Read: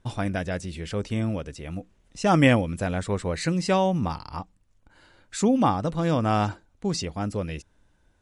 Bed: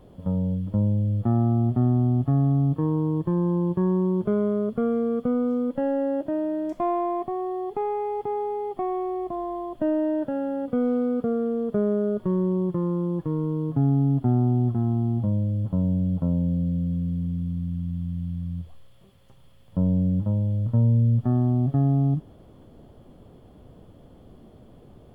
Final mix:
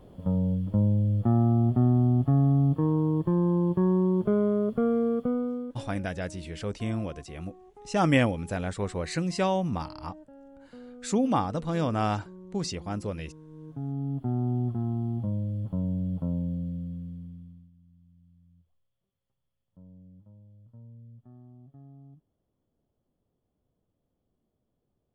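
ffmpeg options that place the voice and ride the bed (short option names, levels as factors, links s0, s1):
-filter_complex "[0:a]adelay=5700,volume=0.631[s0];[1:a]volume=6.31,afade=t=out:st=5.07:d=0.81:silence=0.0794328,afade=t=in:st=13.47:d=1.07:silence=0.141254,afade=t=out:st=16.36:d=1.35:silence=0.0668344[s1];[s0][s1]amix=inputs=2:normalize=0"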